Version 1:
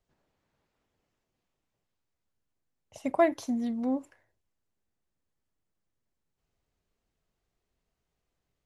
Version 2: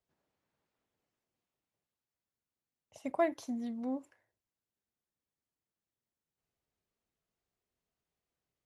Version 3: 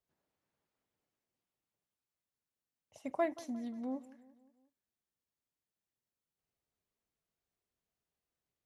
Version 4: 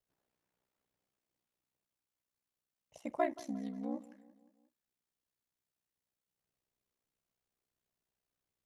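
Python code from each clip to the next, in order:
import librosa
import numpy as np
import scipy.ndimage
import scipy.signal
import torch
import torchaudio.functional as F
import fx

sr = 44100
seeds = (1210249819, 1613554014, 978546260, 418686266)

y1 = fx.highpass(x, sr, hz=110.0, slope=6)
y1 = y1 * 10.0 ** (-6.5 / 20.0)
y2 = fx.echo_feedback(y1, sr, ms=177, feedback_pct=54, wet_db=-19)
y2 = y2 * 10.0 ** (-3.0 / 20.0)
y3 = y2 * np.sin(2.0 * np.pi * 31.0 * np.arange(len(y2)) / sr)
y3 = y3 * 10.0 ** (3.0 / 20.0)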